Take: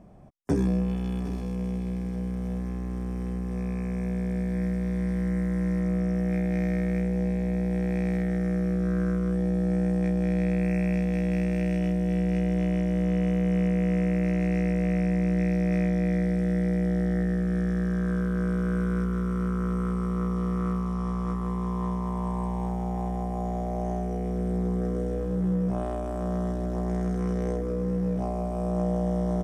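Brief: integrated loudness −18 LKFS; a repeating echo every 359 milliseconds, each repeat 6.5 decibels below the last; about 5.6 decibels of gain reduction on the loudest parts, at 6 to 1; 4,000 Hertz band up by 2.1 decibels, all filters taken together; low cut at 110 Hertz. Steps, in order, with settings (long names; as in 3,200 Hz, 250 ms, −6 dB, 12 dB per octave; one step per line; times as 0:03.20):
high-pass filter 110 Hz
parametric band 4,000 Hz +3 dB
downward compressor 6 to 1, threshold −27 dBFS
repeating echo 359 ms, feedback 47%, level −6.5 dB
level +12.5 dB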